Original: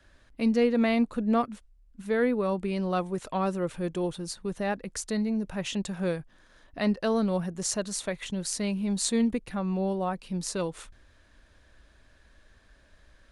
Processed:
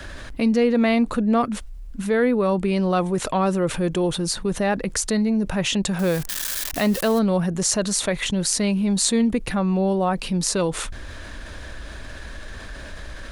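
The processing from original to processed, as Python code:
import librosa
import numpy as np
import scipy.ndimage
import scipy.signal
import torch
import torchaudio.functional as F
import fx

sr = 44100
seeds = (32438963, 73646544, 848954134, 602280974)

y = fx.crossing_spikes(x, sr, level_db=-30.5, at=(5.99, 7.19))
y = fx.env_flatten(y, sr, amount_pct=50)
y = y * librosa.db_to_amplitude(4.0)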